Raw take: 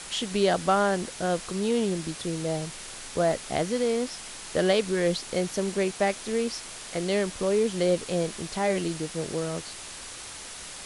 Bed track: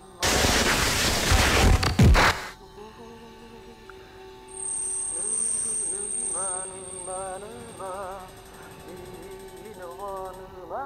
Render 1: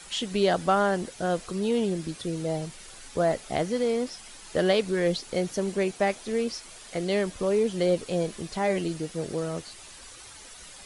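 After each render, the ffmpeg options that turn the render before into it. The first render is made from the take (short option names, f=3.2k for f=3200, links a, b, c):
-af "afftdn=nr=9:nf=-41"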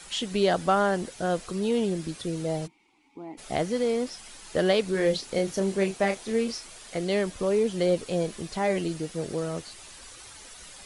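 -filter_complex "[0:a]asplit=3[a][b][c];[a]afade=t=out:st=2.66:d=0.02[d];[b]asplit=3[e][f][g];[e]bandpass=f=300:t=q:w=8,volume=0dB[h];[f]bandpass=f=870:t=q:w=8,volume=-6dB[i];[g]bandpass=f=2.24k:t=q:w=8,volume=-9dB[j];[h][i][j]amix=inputs=3:normalize=0,afade=t=in:st=2.66:d=0.02,afade=t=out:st=3.37:d=0.02[k];[c]afade=t=in:st=3.37:d=0.02[l];[d][k][l]amix=inputs=3:normalize=0,asettb=1/sr,asplit=3[m][n][o];[m]atrim=end=4.924[p];[n]atrim=start=4.92:end=6.67,asetpts=PTS-STARTPTS,afade=t=in:d=0.004:c=qsin,afade=t=out:st=1.746:d=0.004:c=qsin,asplit=2[q][r];[r]adelay=31,volume=-7dB[s];[q][s]amix=inputs=2:normalize=0,atrim=end_sample=77175[t];[o]atrim=start=6.666[u];[p][t]acrossfade=d=0.004:c1=hsin:c2=qsin[v];[v][u]acrossfade=d=0.004:c1=qsin:c2=hsin"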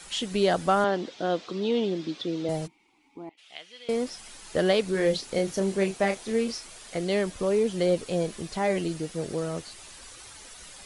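-filter_complex "[0:a]asettb=1/sr,asplit=3[a][b][c];[a]atrim=end=0.844[d];[b]atrim=start=0.84:end=2.49,asetpts=PTS-STARTPTS,afade=t=in:d=0.004:c=qsin,afade=t=out:st=1.646:d=0.004:c=qsin,highpass=210,equalizer=f=300:t=q:w=4:g=6,equalizer=f=1.6k:t=q:w=4:g=-3,equalizer=f=3.5k:t=q:w=4:g=6,lowpass=f=5.4k:w=0.5412,lowpass=f=5.4k:w=1.3066[e];[c]atrim=start=2.486[f];[d][e]acrossfade=d=0.004:c1=hsin:c2=qsin[g];[g][f]acrossfade=d=0.004:c1=qsin:c2=hsin,asettb=1/sr,asplit=3[h][i][j];[h]atrim=end=3.294[k];[i]atrim=start=3.29:end=3.89,asetpts=PTS-STARTPTS,afade=t=in:d=0.004:c=qsin,afade=t=out:st=0.596:d=0.004:c=qsin,bandpass=f=3k:t=q:w=3.2[l];[j]atrim=start=3.886[m];[k][l]acrossfade=d=0.004:c1=hsin:c2=qsin[n];[n][m]acrossfade=d=0.004:c1=qsin:c2=hsin"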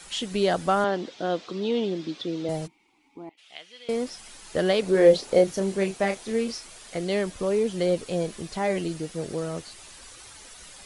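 -filter_complex "[0:a]asettb=1/sr,asplit=3[a][b][c];[a]atrim=end=4.824[d];[b]atrim=start=4.82:end=5.44,asetpts=PTS-STARTPTS,afade=t=in:d=0.004:c=qsin,afade=t=out:st=0.616:d=0.004:c=qsin,equalizer=f=550:w=0.83:g=9.5[e];[c]atrim=start=5.436[f];[d][e]acrossfade=d=0.004:c1=hsin:c2=qsin[g];[g][f]acrossfade=d=0.004:c1=qsin:c2=hsin"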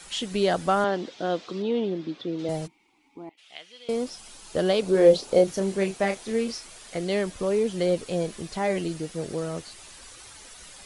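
-filter_complex "[0:a]asettb=1/sr,asplit=3[a][b][c];[a]atrim=end=1.624[d];[b]atrim=start=1.62:end=2.39,asetpts=PTS-STARTPTS,afade=t=in:d=0.004:c=qsin,afade=t=out:st=0.766:d=0.004:c=qsin,aemphasis=mode=reproduction:type=75kf[e];[c]atrim=start=2.386[f];[d][e]acrossfade=d=0.004:c1=hsin:c2=qsin[g];[g][f]acrossfade=d=0.004:c1=qsin:c2=hsin,asettb=1/sr,asplit=3[h][i][j];[h]atrim=end=3.724[k];[i]atrim=start=3.72:end=5.48,asetpts=PTS-STARTPTS,afade=t=in:d=0.004:c=qsin,afade=t=out:st=1.756:d=0.004:c=qsin,equalizer=f=1.9k:w=2.7:g=-6[l];[j]atrim=start=5.476[m];[k][l]acrossfade=d=0.004:c1=hsin:c2=qsin[n];[n][m]acrossfade=d=0.004:c1=qsin:c2=hsin"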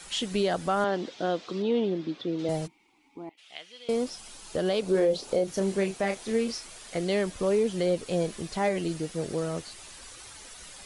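-af "alimiter=limit=-16.5dB:level=0:latency=1:release=204"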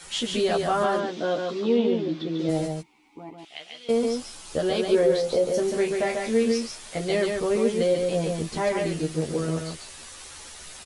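-filter_complex "[0:a]asplit=2[a][b];[b]adelay=13,volume=-2dB[c];[a][c]amix=inputs=2:normalize=0,asplit=2[d][e];[e]aecho=0:1:143:0.631[f];[d][f]amix=inputs=2:normalize=0"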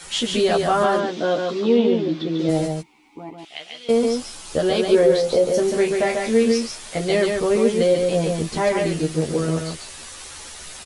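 -af "volume=5dB"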